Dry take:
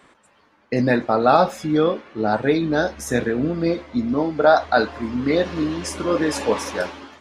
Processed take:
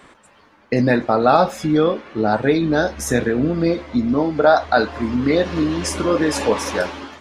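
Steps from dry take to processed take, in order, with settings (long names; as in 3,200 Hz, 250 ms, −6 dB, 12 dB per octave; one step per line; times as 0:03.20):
in parallel at +1.5 dB: downward compressor, threshold −25 dBFS, peak gain reduction 15 dB
on the sum: low-shelf EQ 69 Hz +5.5 dB
level −1 dB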